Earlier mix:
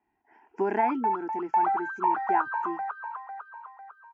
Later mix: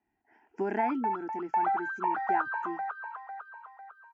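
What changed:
background +3.0 dB
master: add graphic EQ with 15 bands 400 Hz −4 dB, 1,000 Hz −9 dB, 2,500 Hz −3 dB

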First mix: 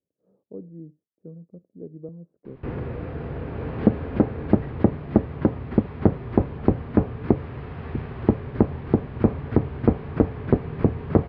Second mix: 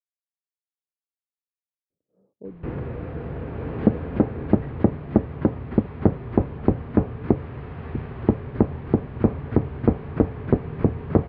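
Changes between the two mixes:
speech: entry +1.90 s
master: add high-frequency loss of the air 120 metres

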